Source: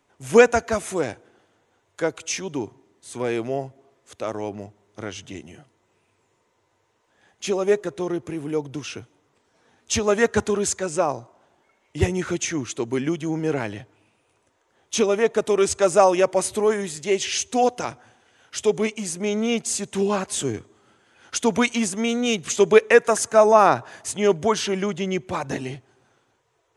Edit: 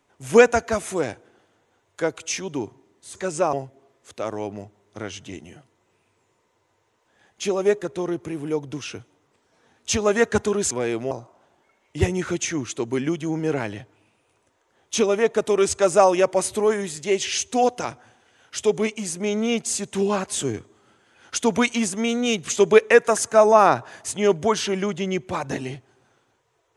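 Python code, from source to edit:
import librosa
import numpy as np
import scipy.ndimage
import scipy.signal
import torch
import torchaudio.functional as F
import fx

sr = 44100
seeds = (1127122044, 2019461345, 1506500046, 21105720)

y = fx.edit(x, sr, fx.swap(start_s=3.15, length_s=0.4, other_s=10.73, other_length_s=0.38), tone=tone)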